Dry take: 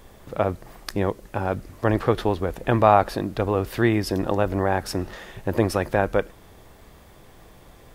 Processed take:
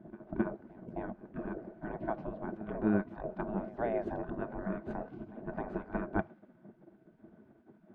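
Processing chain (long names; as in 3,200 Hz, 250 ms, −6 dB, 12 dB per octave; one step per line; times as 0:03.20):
downward compressor 12 to 1, threshold −22 dBFS, peak gain reduction 13 dB
low-shelf EQ 350 Hz −6.5 dB
gate on every frequency bin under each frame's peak −15 dB weak
hollow resonant body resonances 210/340/630/1,500 Hz, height 14 dB, ringing for 45 ms
low-pass that shuts in the quiet parts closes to 330 Hz, open at −16.5 dBFS
echo ahead of the sound 265 ms −18.5 dB
level +7.5 dB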